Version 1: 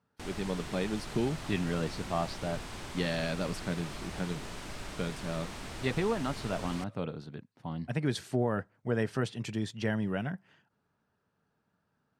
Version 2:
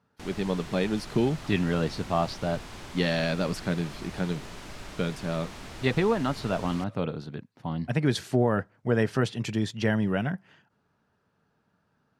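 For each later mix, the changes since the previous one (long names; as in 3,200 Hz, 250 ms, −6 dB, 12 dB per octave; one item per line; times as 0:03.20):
speech +6.0 dB
master: add parametric band 8,500 Hz −4.5 dB 0.2 octaves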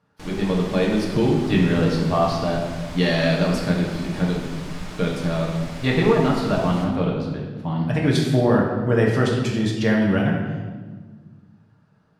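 reverb: on, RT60 1.4 s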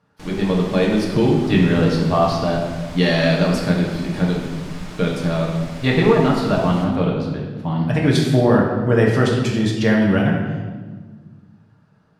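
speech +3.0 dB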